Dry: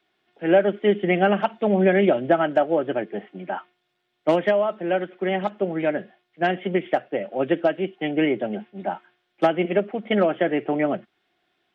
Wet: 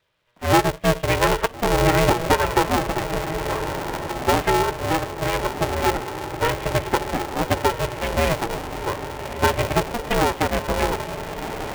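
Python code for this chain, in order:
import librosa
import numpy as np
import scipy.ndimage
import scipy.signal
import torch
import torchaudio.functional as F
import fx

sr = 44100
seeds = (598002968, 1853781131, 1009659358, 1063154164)

y = fx.vibrato(x, sr, rate_hz=1.0, depth_cents=9.2)
y = fx.echo_diffused(y, sr, ms=1370, feedback_pct=57, wet_db=-8.5)
y = y * np.sign(np.sin(2.0 * np.pi * 240.0 * np.arange(len(y)) / sr))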